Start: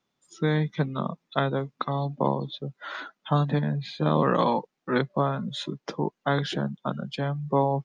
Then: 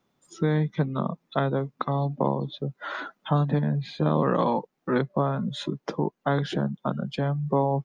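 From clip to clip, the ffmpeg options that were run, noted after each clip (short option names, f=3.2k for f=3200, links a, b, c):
-af "equalizer=f=4.5k:w=0.35:g=-7.5,acompressor=threshold=-42dB:ratio=1.5,volume=8.5dB"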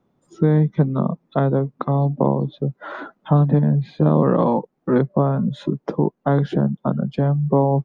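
-af "tiltshelf=f=1.4k:g=8.5"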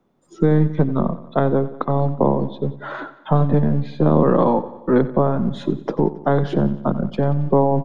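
-filter_complex "[0:a]acrossover=split=190[a][b];[a]aeval=exprs='max(val(0),0)':c=same[c];[c][b]amix=inputs=2:normalize=0,aecho=1:1:91|182|273|364|455:0.158|0.0903|0.0515|0.0294|0.0167,volume=2dB"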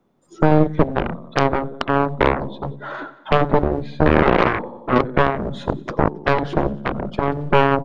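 -filter_complex "[0:a]aeval=exprs='0.891*(cos(1*acos(clip(val(0)/0.891,-1,1)))-cos(1*PI/2))+0.141*(cos(4*acos(clip(val(0)/0.891,-1,1)))-cos(4*PI/2))+0.178*(cos(6*acos(clip(val(0)/0.891,-1,1)))-cos(6*PI/2))+0.224*(cos(7*acos(clip(val(0)/0.891,-1,1)))-cos(7*PI/2))+0.0708*(cos(8*acos(clip(val(0)/0.891,-1,1)))-cos(8*PI/2))':c=same,asplit=2[a][b];[b]asoftclip=type=tanh:threshold=-11.5dB,volume=-5dB[c];[a][c]amix=inputs=2:normalize=0,volume=-1dB"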